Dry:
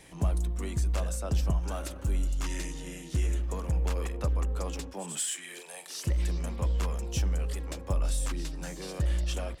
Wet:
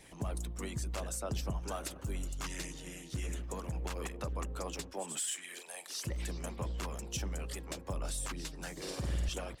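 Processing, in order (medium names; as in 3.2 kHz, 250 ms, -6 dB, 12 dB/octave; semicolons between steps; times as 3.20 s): 8.72–9.29 s: flutter echo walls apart 8.6 m, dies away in 1.3 s; harmonic-percussive split harmonic -12 dB; peak limiter -28 dBFS, peak gain reduction 9.5 dB; trim +1 dB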